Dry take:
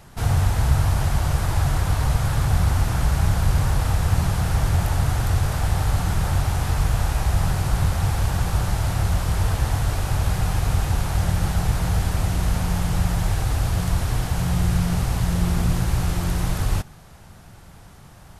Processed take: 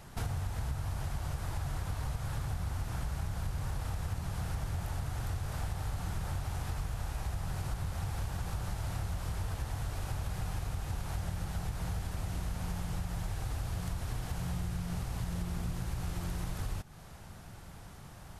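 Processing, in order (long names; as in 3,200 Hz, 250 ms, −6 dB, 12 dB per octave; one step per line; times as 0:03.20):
downward compressor, threshold −29 dBFS, peak gain reduction 16 dB
level −4 dB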